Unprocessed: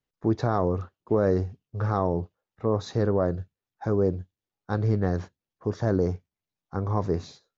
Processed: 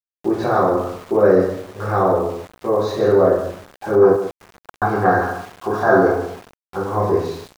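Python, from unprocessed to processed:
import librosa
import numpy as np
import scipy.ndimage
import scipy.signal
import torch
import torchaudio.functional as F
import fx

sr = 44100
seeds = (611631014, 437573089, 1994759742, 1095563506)

p1 = fx.bass_treble(x, sr, bass_db=-10, treble_db=-9)
p2 = fx.rev_double_slope(p1, sr, seeds[0], early_s=0.66, late_s=2.9, knee_db=-26, drr_db=-9.0)
p3 = fx.spec_box(p2, sr, start_s=4.02, length_s=2.47, low_hz=650.0, high_hz=1700.0, gain_db=12)
p4 = fx.gate_flip(p3, sr, shuts_db=-20.0, range_db=-33, at=(4.16, 4.82))
p5 = p4 + fx.echo_single(p4, sr, ms=146, db=-11.0, dry=0)
p6 = np.where(np.abs(p5) >= 10.0 ** (-37.5 / 20.0), p5, 0.0)
y = F.gain(torch.from_numpy(p6), 1.5).numpy()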